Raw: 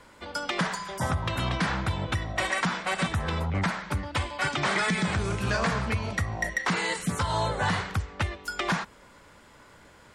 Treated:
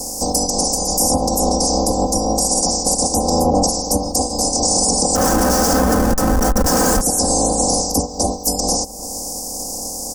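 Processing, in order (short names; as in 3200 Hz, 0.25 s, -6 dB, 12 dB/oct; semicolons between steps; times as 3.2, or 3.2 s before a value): spectral limiter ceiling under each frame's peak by 27 dB; elliptic band-stop 770–5000 Hz, stop band 50 dB; 5.15–7.01 Schmitt trigger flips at -34 dBFS; comb 3.9 ms, depth 89%; compressor 3:1, threshold -45 dBFS, peak gain reduction 16 dB; soft clip -21 dBFS, distortion -43 dB; band shelf 2900 Hz -15.5 dB 1.3 oct; analogue delay 0.304 s, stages 4096, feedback 32%, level -20 dB; maximiser +32.5 dB; gain -4.5 dB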